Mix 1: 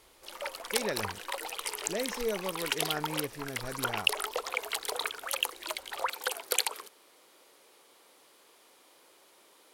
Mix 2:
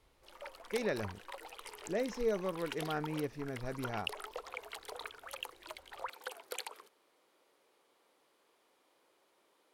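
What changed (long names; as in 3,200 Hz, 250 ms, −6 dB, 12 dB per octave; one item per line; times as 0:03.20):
background −9.0 dB
master: add high-shelf EQ 3,300 Hz −9 dB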